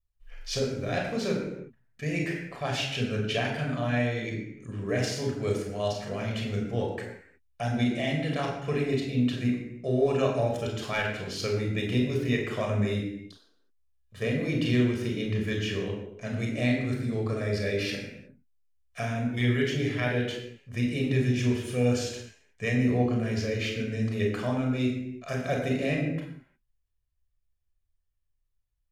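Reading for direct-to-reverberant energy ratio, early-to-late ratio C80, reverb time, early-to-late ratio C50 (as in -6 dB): -0.5 dB, 6.0 dB, no single decay rate, 3.5 dB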